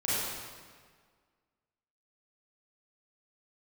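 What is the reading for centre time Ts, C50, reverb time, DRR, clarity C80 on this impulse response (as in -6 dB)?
0.133 s, -5.0 dB, 1.7 s, -10.0 dB, -1.5 dB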